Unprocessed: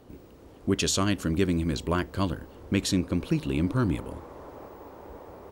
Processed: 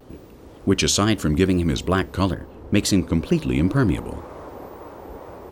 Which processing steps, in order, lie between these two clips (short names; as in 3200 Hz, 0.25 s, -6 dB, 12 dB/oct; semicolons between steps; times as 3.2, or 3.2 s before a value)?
wow and flutter 130 cents; 2.34–3.6 mismatched tape noise reduction decoder only; gain +6.5 dB